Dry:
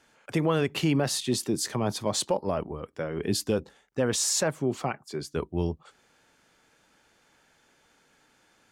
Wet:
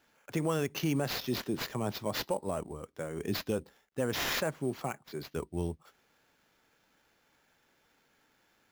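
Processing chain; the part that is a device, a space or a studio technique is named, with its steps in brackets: early companding sampler (sample-rate reducer 8.9 kHz, jitter 0%; companded quantiser 8-bit); trim -6 dB

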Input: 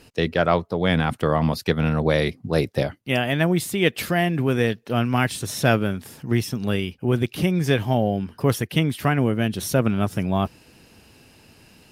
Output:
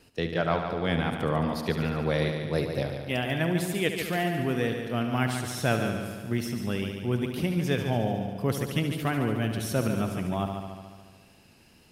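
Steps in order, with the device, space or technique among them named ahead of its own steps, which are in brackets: multi-head tape echo (multi-head delay 72 ms, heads first and second, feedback 62%, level -10 dB; wow and flutter 18 cents); trim -7.5 dB

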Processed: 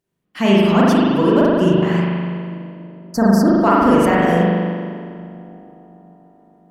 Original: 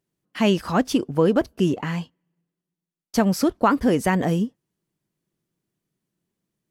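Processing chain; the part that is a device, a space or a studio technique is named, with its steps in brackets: 2.00–3.48 s: Chebyshev band-stop 1.7–4.6 kHz, order 3; feedback echo behind a low-pass 142 ms, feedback 84%, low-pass 690 Hz, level -21 dB; dub delay into a spring reverb (filtered feedback delay 286 ms, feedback 68%, low-pass 880 Hz, level -22 dB; spring tank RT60 2 s, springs 40 ms, chirp 60 ms, DRR -6.5 dB)

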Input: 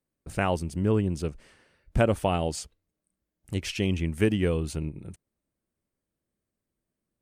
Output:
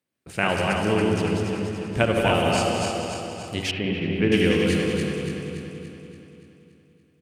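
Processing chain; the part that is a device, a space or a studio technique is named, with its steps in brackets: backward echo that repeats 143 ms, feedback 73%, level -3 dB; PA in a hall (high-pass 110 Hz 12 dB/octave; peaking EQ 2.7 kHz +8 dB 1.7 oct; delay 191 ms -11 dB; reverberation RT60 2.3 s, pre-delay 50 ms, DRR 3.5 dB); 3.71–4.32 s: distance through air 470 m

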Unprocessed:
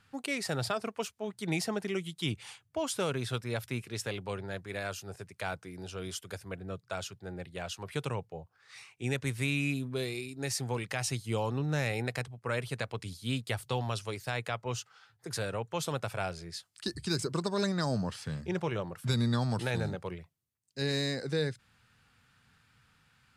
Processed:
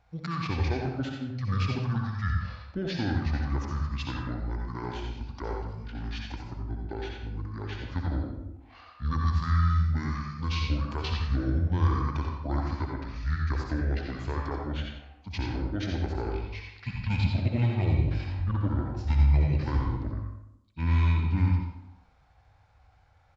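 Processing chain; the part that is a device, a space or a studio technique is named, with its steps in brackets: monster voice (pitch shift -9 st; formant shift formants -3 st; bass shelf 180 Hz +8 dB; delay 87 ms -9 dB; reverberation RT60 0.80 s, pre-delay 57 ms, DRR 1 dB); trim -2 dB

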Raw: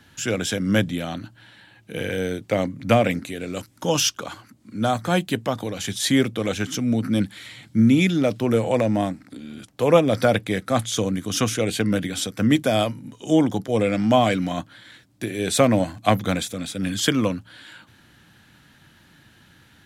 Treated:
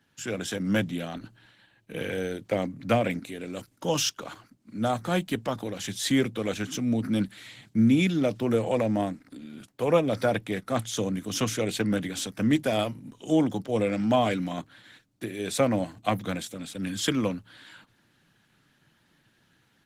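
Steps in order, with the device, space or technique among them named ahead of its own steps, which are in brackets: video call (high-pass 100 Hz 24 dB/octave; level rider gain up to 3.5 dB; gate -45 dBFS, range -6 dB; trim -7.5 dB; Opus 16 kbps 48 kHz)

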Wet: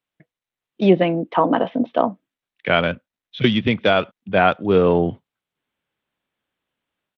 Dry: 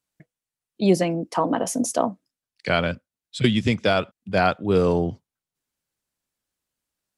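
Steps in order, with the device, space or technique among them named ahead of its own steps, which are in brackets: Bluetooth headset (high-pass 160 Hz 6 dB/octave; level rider gain up to 8 dB; resampled via 8 kHz; SBC 64 kbps 32 kHz)

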